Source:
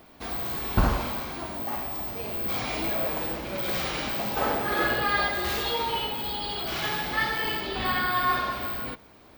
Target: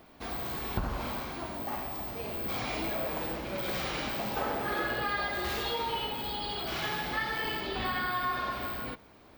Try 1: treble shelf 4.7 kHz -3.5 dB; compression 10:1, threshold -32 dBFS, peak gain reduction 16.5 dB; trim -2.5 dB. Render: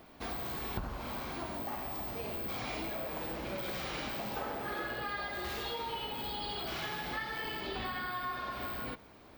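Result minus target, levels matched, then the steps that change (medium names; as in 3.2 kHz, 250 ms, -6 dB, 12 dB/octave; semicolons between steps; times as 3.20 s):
compression: peak gain reduction +6.5 dB
change: compression 10:1, threshold -25 dBFS, peak gain reduction 10 dB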